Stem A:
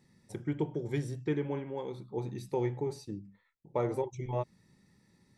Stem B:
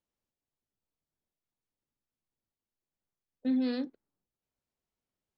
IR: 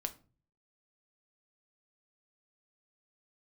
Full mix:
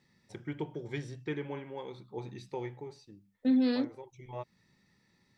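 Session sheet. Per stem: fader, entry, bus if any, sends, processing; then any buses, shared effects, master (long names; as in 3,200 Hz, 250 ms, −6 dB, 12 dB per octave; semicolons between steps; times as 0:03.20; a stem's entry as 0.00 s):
−1.0 dB, 0.00 s, no send, low-pass filter 4,600 Hz 12 dB per octave; tilt shelving filter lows −5 dB; automatic ducking −12 dB, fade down 1.05 s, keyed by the second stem
+3.0 dB, 0.00 s, no send, no processing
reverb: not used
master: no processing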